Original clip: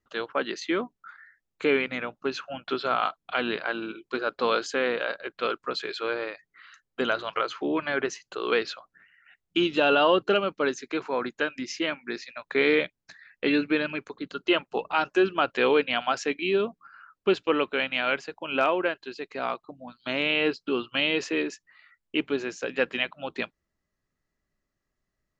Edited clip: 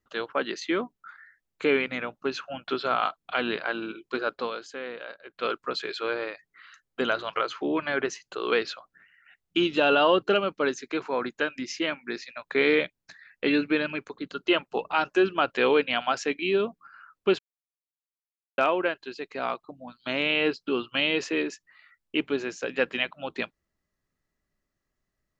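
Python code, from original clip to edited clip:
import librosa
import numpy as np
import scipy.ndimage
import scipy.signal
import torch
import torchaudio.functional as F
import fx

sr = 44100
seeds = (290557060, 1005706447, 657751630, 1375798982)

y = fx.edit(x, sr, fx.fade_down_up(start_s=4.24, length_s=1.31, db=-10.5, fade_s=0.27, curve='qsin'),
    fx.silence(start_s=17.39, length_s=1.19), tone=tone)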